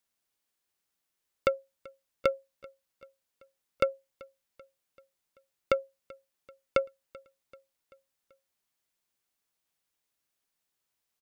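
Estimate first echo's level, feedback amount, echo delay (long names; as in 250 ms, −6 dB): −23.0 dB, 55%, 386 ms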